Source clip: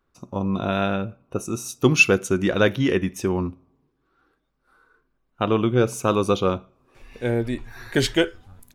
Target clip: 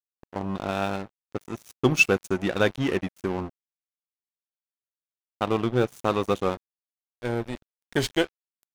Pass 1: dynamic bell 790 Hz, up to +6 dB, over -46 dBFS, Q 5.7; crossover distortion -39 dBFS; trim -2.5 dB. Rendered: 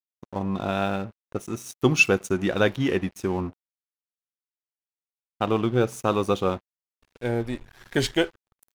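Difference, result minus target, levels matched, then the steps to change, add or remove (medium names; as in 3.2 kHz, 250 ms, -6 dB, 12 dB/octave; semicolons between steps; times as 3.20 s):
crossover distortion: distortion -9 dB
change: crossover distortion -29 dBFS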